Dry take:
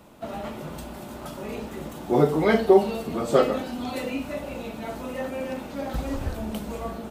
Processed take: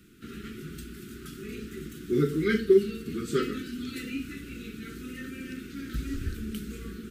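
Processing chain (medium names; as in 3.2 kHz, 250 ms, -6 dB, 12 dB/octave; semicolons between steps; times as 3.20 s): elliptic band-stop 400–1400 Hz, stop band 40 dB; 2.48–3.06 s: tape noise reduction on one side only decoder only; trim -2.5 dB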